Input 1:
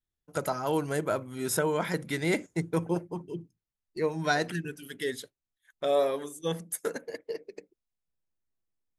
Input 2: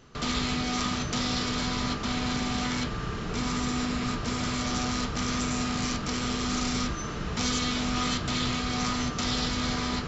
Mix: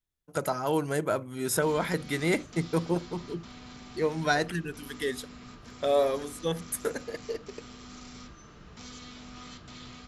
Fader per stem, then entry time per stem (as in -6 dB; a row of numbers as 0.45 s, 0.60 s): +1.0 dB, -17.5 dB; 0.00 s, 1.40 s